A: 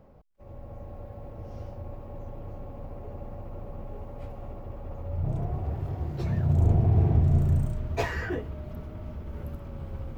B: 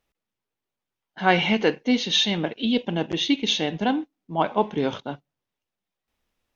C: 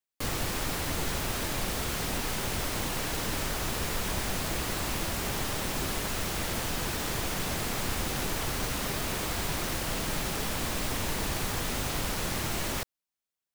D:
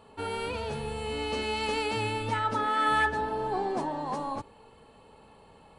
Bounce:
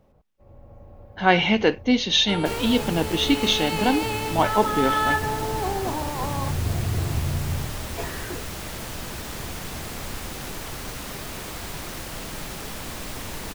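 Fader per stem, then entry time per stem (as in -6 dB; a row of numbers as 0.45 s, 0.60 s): -4.5 dB, +1.5 dB, -2.5 dB, +2.5 dB; 0.00 s, 0.00 s, 2.25 s, 2.10 s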